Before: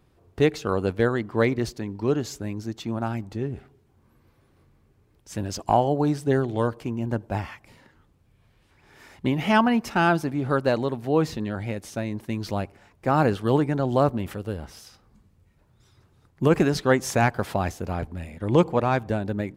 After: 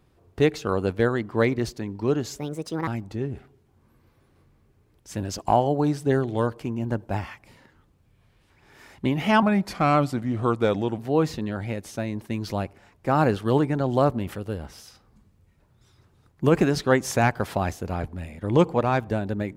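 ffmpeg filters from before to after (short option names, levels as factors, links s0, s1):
-filter_complex "[0:a]asplit=5[s0][s1][s2][s3][s4];[s0]atrim=end=2.384[s5];[s1]atrim=start=2.38:end=3.08,asetpts=PTS-STARTPTS,asetrate=62622,aresample=44100,atrim=end_sample=21739,asetpts=PTS-STARTPTS[s6];[s2]atrim=start=3.076:end=9.634[s7];[s3]atrim=start=9.63:end=10.97,asetpts=PTS-STARTPTS,asetrate=37926,aresample=44100[s8];[s4]atrim=start=10.966[s9];[s5][s6]acrossfade=d=0.004:c1=hsin:c2=hsin[s10];[s10][s7]acrossfade=d=0.004:c1=hsin:c2=hsin[s11];[s11][s8]acrossfade=d=0.004:c1=hsin:c2=hsin[s12];[s12][s9]acrossfade=d=0.004:c1=hsin:c2=hsin"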